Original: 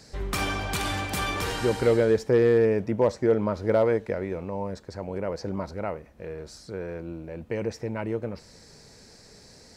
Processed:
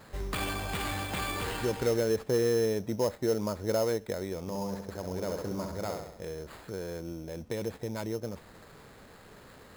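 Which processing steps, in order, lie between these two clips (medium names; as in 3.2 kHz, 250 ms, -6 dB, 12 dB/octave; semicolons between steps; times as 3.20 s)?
in parallel at +2.5 dB: compression, threshold -34 dBFS, peak gain reduction 16.5 dB; 4.40–6.26 s: on the sum: flutter echo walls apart 11.3 m, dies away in 0.74 s; sample-rate reducer 5.8 kHz, jitter 0%; trim -8.5 dB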